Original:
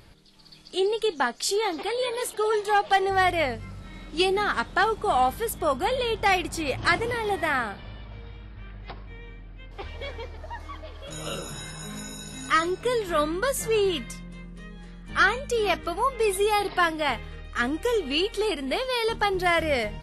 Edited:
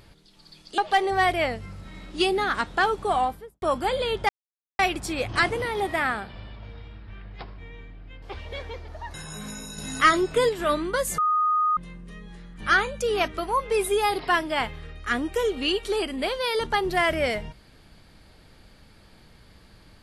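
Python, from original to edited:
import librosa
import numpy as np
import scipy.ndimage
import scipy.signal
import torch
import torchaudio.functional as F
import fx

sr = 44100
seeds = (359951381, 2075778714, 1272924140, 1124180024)

y = fx.studio_fade_out(x, sr, start_s=5.06, length_s=0.55)
y = fx.edit(y, sr, fx.cut(start_s=0.78, length_s=1.99),
    fx.insert_silence(at_s=6.28, length_s=0.5),
    fx.cut(start_s=10.63, length_s=1.0),
    fx.clip_gain(start_s=12.27, length_s=0.71, db=4.0),
    fx.bleep(start_s=13.67, length_s=0.59, hz=1240.0, db=-19.0), tone=tone)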